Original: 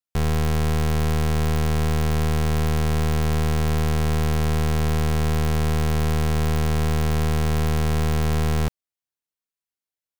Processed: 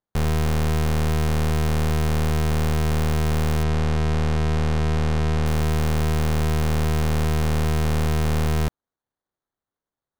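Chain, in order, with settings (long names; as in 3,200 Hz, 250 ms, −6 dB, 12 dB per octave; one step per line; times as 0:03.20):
decimation without filtering 17×
0:03.63–0:05.46: high-frequency loss of the air 63 metres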